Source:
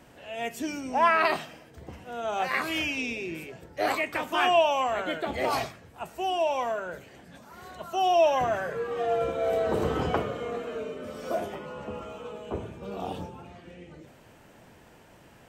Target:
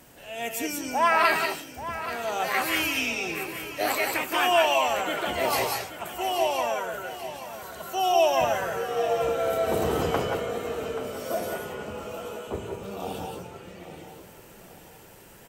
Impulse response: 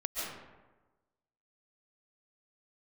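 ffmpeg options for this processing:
-filter_complex "[0:a]aemphasis=mode=production:type=50fm,aecho=1:1:832|1664|2496|3328:0.237|0.107|0.048|0.0216[link_01];[1:a]atrim=start_sample=2205,atrim=end_sample=6174,asetrate=31752,aresample=44100[link_02];[link_01][link_02]afir=irnorm=-1:irlink=0"

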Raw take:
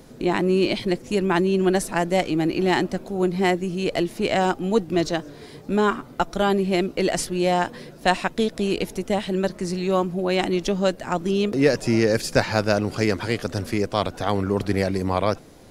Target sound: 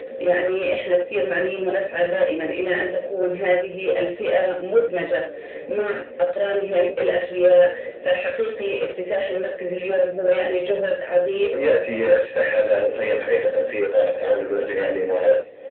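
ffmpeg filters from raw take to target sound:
ffmpeg -i in.wav -filter_complex "[0:a]asplit=3[link_01][link_02][link_03];[link_01]bandpass=frequency=530:width_type=q:width=8,volume=0dB[link_04];[link_02]bandpass=frequency=1840:width_type=q:width=8,volume=-6dB[link_05];[link_03]bandpass=frequency=2480:width_type=q:width=8,volume=-9dB[link_06];[link_04][link_05][link_06]amix=inputs=3:normalize=0,asplit=2[link_07][link_08];[link_08]highpass=frequency=720:poles=1,volume=25dB,asoftclip=type=tanh:threshold=-12.5dB[link_09];[link_07][link_09]amix=inputs=2:normalize=0,lowpass=frequency=2000:poles=1,volume=-6dB,flanger=delay=7:depth=4.7:regen=-30:speed=1.6:shape=sinusoidal,acompressor=mode=upward:threshold=-33dB:ratio=2.5,asplit=2[link_10][link_11];[link_11]adelay=17,volume=-5dB[link_12];[link_10][link_12]amix=inputs=2:normalize=0,asplit=2[link_13][link_14];[link_14]aecho=0:1:13|47|75:0.422|0.211|0.473[link_15];[link_13][link_15]amix=inputs=2:normalize=0,volume=4dB" -ar 8000 -c:a libopencore_amrnb -b:a 10200 out.amr

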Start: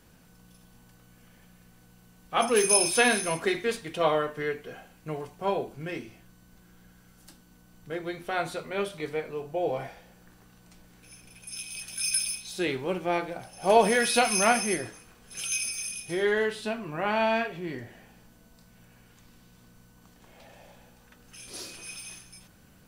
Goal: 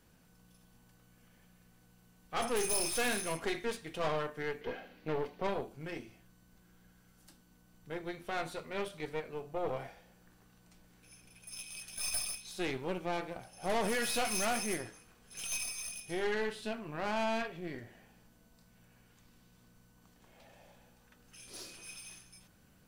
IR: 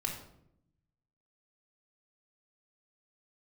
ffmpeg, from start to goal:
-filter_complex "[0:a]asettb=1/sr,asplit=3[link_01][link_02][link_03];[link_01]atrim=end=4.614[link_04];[link_02]atrim=start=4.61:end=5.47,asetpts=PTS-STARTPTS,afade=type=in:duration=0.004:curve=qsin,afade=type=out:start_time=0.856:duration=0.004:curve=qsin,equalizer=frequency=125:width_type=o:width=1:gain=-6,equalizer=frequency=250:width_type=o:width=1:gain=9,equalizer=frequency=500:width_type=o:width=1:gain=9,equalizer=frequency=2000:width_type=o:width=1:gain=8,equalizer=frequency=4000:width_type=o:width=1:gain=8,equalizer=frequency=8000:width_type=o:width=1:gain=-10[link_05];[link_03]atrim=start=5.466[link_06];[link_04][link_05]acrossfade=duration=0.004:curve1=hsin:curve2=qsin[link_07];[link_07][link_06]acrossfade=duration=0.004:curve1=qsin:curve2=hsin,aeval=exprs='(tanh(20*val(0)+0.75)-tanh(0.75))/20':channel_layout=same,volume=-3dB"

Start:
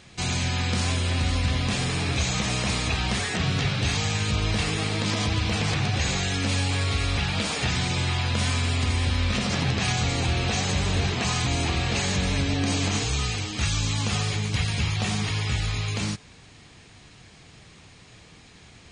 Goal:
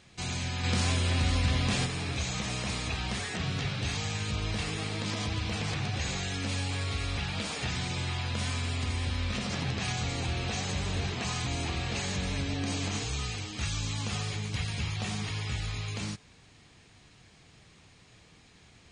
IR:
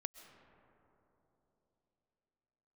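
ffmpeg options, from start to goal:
-filter_complex "[0:a]asplit=3[link_01][link_02][link_03];[link_01]afade=type=out:start_time=0.63:duration=0.02[link_04];[link_02]acontrast=25,afade=type=in:start_time=0.63:duration=0.02,afade=type=out:start_time=1.85:duration=0.02[link_05];[link_03]afade=type=in:start_time=1.85:duration=0.02[link_06];[link_04][link_05][link_06]amix=inputs=3:normalize=0,volume=-7.5dB"

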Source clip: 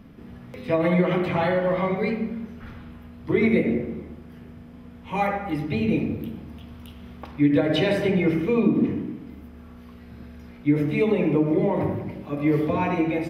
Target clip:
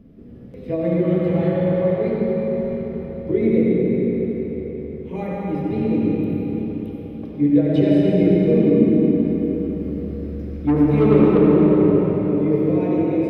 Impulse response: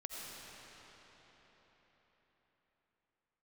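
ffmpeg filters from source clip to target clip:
-filter_complex "[0:a]lowshelf=frequency=670:width_type=q:width=1.5:gain=11,asplit=3[link_01][link_02][link_03];[link_01]afade=type=out:start_time=9.2:duration=0.02[link_04];[link_02]acontrast=63,afade=type=in:start_time=9.2:duration=0.02,afade=type=out:start_time=11.37:duration=0.02[link_05];[link_03]afade=type=in:start_time=11.37:duration=0.02[link_06];[link_04][link_05][link_06]amix=inputs=3:normalize=0[link_07];[1:a]atrim=start_sample=2205,asetrate=43218,aresample=44100[link_08];[link_07][link_08]afir=irnorm=-1:irlink=0,volume=-6.5dB"

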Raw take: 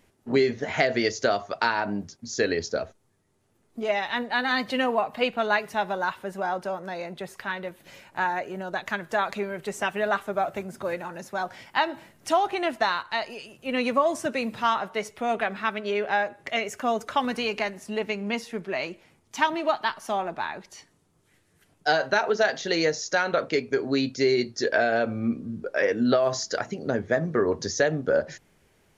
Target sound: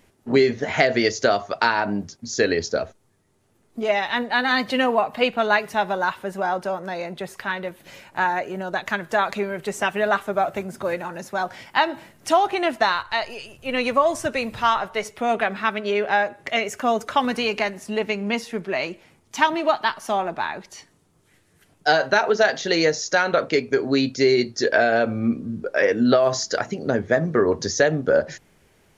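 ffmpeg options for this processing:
ffmpeg -i in.wav -filter_complex "[0:a]asplit=3[link_01][link_02][link_03];[link_01]afade=type=out:start_time=12.92:duration=0.02[link_04];[link_02]asubboost=boost=9:cutoff=67,afade=type=in:start_time=12.92:duration=0.02,afade=type=out:start_time=15.04:duration=0.02[link_05];[link_03]afade=type=in:start_time=15.04:duration=0.02[link_06];[link_04][link_05][link_06]amix=inputs=3:normalize=0,volume=4.5dB" out.wav

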